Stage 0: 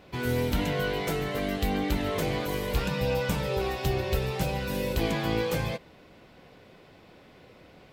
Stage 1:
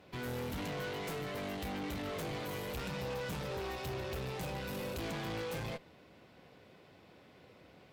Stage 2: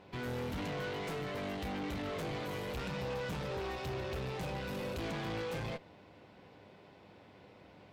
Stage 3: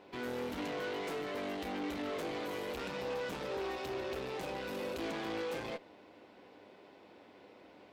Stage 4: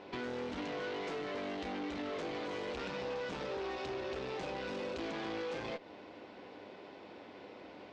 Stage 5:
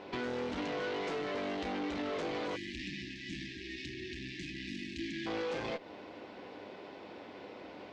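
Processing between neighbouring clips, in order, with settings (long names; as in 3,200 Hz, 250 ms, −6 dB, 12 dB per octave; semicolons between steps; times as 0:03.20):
high-pass filter 60 Hz 24 dB per octave; tube saturation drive 33 dB, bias 0.55; level −3.5 dB
high-shelf EQ 8,700 Hz −12 dB; hum with harmonics 100 Hz, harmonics 10, −65 dBFS −1 dB per octave; level +1 dB
low shelf with overshoot 200 Hz −10 dB, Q 1.5
low-pass filter 6,500 Hz 24 dB per octave; downward compressor 3 to 1, threshold −45 dBFS, peak gain reduction 8 dB; level +6 dB
time-frequency box erased 0:02.56–0:05.26, 370–1,600 Hz; level +3 dB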